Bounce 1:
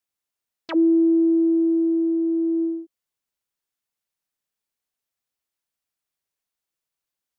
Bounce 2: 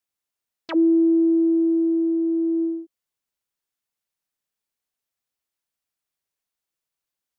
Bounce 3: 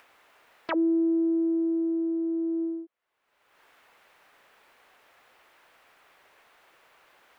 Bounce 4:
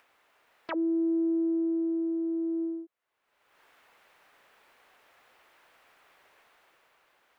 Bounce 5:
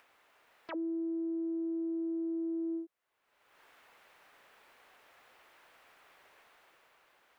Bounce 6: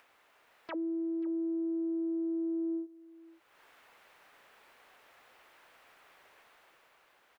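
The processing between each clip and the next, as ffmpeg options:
-af anull
-filter_complex "[0:a]acompressor=mode=upward:threshold=-21dB:ratio=2.5,acrossover=split=380 2600:gain=0.158 1 0.0708[a][b][c];[a][b][c]amix=inputs=3:normalize=0"
-af "dynaudnorm=f=130:g=13:m=5dB,volume=-7dB"
-af "alimiter=level_in=7.5dB:limit=-24dB:level=0:latency=1:release=48,volume=-7.5dB"
-af "aecho=1:1:534:0.0944,volume=1dB"

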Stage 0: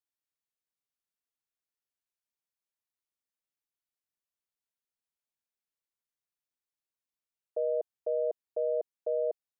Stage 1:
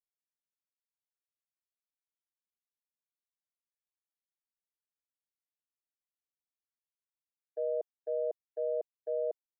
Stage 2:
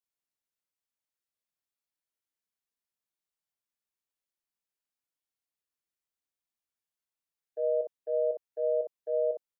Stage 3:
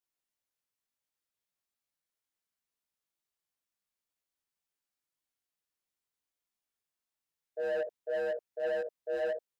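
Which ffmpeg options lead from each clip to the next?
-af "agate=range=-33dB:threshold=-28dB:ratio=3:detection=peak,volume=-2dB"
-af "aecho=1:1:21|58:0.355|0.596"
-af "asoftclip=type=hard:threshold=-26.5dB,flanger=delay=17:depth=3.5:speed=1.7,asoftclip=type=tanh:threshold=-31dB,volume=4dB"

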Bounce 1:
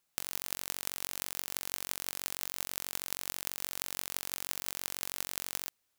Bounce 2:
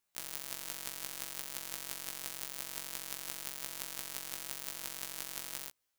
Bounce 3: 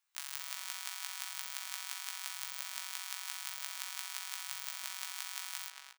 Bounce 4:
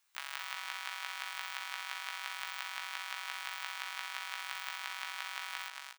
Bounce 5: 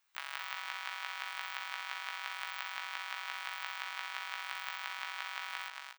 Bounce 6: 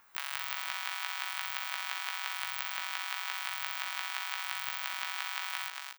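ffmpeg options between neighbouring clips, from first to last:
-af "afftfilt=real='re*1.73*eq(mod(b,3),0)':imag='im*1.73*eq(mod(b,3),0)':win_size=2048:overlap=0.75,volume=-1.5dB"
-filter_complex "[0:a]highpass=f=930:w=0.5412,highpass=f=930:w=1.3066,equalizer=f=14k:t=o:w=0.98:g=-7.5,asplit=2[a][b];[b]adelay=228,lowpass=f=3.5k:p=1,volume=-4dB,asplit=2[c][d];[d]adelay=228,lowpass=f=3.5k:p=1,volume=0.26,asplit=2[e][f];[f]adelay=228,lowpass=f=3.5k:p=1,volume=0.26,asplit=2[g][h];[h]adelay=228,lowpass=f=3.5k:p=1,volume=0.26[i];[c][e][g][i]amix=inputs=4:normalize=0[j];[a][j]amix=inputs=2:normalize=0,volume=2.5dB"
-filter_complex "[0:a]acrossover=split=3400[a][b];[b]acompressor=threshold=-51dB:ratio=4:attack=1:release=60[c];[a][c]amix=inputs=2:normalize=0,volume=7.5dB"
-af "equalizer=f=11k:t=o:w=1.8:g=-9,volume=1.5dB"
-filter_complex "[0:a]acrossover=split=1800[a][b];[a]acompressor=mode=upward:threshold=-54dB:ratio=2.5[c];[b]crystalizer=i=1.5:c=0[d];[c][d]amix=inputs=2:normalize=0,volume=2dB"

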